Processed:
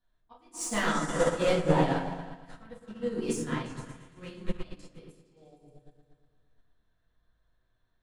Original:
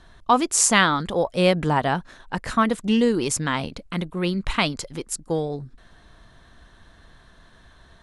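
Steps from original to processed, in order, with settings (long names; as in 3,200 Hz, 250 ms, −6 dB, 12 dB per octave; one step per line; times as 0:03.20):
volume swells 301 ms
soft clipping −14.5 dBFS, distortion −12 dB
on a send: echo whose low-pass opens from repeat to repeat 115 ms, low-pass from 400 Hz, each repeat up 2 octaves, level −3 dB
on the sum: rectangular room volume 150 cubic metres, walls mixed, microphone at 1.9 metres
expander for the loud parts 2.5 to 1, over −27 dBFS
level −9 dB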